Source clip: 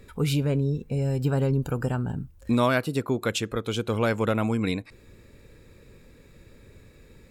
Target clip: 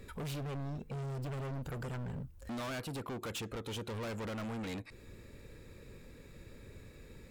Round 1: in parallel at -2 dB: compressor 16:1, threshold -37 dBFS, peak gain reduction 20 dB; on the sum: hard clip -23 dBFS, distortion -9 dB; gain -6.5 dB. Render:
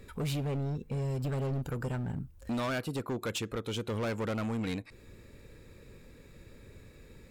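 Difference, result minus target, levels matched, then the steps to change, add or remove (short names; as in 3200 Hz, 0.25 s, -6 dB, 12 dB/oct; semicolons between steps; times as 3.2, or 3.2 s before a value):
hard clip: distortion -5 dB
change: hard clip -31.5 dBFS, distortion -4 dB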